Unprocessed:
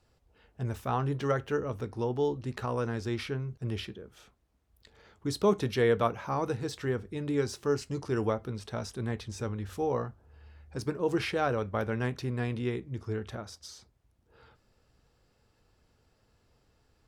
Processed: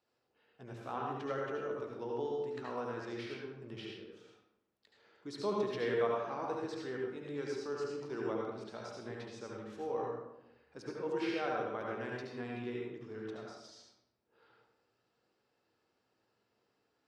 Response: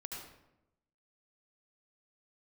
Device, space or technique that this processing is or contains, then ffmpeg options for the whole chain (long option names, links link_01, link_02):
supermarket ceiling speaker: -filter_complex "[0:a]highpass=260,lowpass=5800[link_01];[1:a]atrim=start_sample=2205[link_02];[link_01][link_02]afir=irnorm=-1:irlink=0,volume=-4.5dB"